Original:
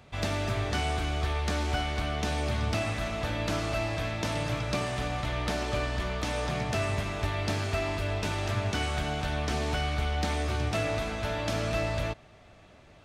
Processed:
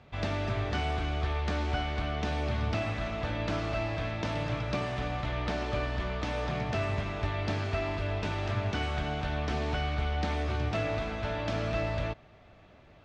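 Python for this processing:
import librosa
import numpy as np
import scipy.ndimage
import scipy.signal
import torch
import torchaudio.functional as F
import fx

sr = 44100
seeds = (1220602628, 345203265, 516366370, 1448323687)

y = fx.air_absorb(x, sr, metres=140.0)
y = y * 10.0 ** (-1.0 / 20.0)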